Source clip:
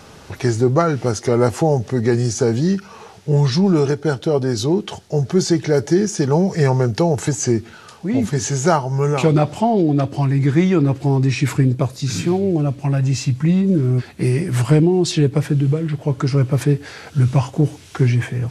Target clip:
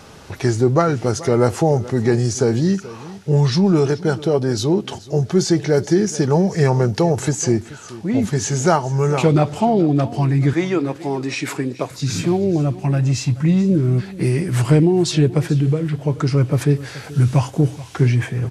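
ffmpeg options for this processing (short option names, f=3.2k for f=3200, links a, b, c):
-filter_complex "[0:a]asettb=1/sr,asplit=3[a][b][c];[a]atrim=end=10.534[d];[b]atrim=start=10.53:end=11.91,asetpts=PTS-STARTPTS,afade=t=in:d=0.004:c=qsin,afade=t=out:st=1.376:d=0.004:c=qsin,highpass=310[e];[c]atrim=start=11.906[f];[d][e]acrossfade=d=0.004:c1=hsin:c2=qsin[g];[g][f]acrossfade=d=0.004:c1=qsin:c2=hsin,asettb=1/sr,asplit=3[h][i][j];[h]atrim=end=16.764[k];[i]atrim=start=16.76:end=17.65,asetpts=PTS-STARTPTS,afade=t=in:d=0.004:c=qsin,afade=t=out:st=0.886:d=0.004:c=qsin,highshelf=f=8.6k:g=7.5[l];[j]atrim=start=17.646[m];[k][l]acrossfade=d=0.004:c1=hsin:c2=qsin[n];[n][m]acrossfade=d=0.004:c1=qsin:c2=hsin,aecho=1:1:430:0.126"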